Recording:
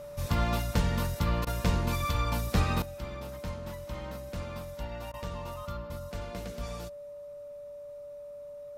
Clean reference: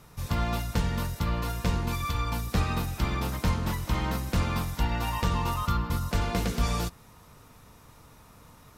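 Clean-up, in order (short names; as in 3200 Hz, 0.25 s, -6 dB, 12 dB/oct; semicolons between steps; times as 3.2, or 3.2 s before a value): notch 580 Hz, Q 30; interpolate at 1.45/5.12, 17 ms; gain 0 dB, from 2.82 s +12 dB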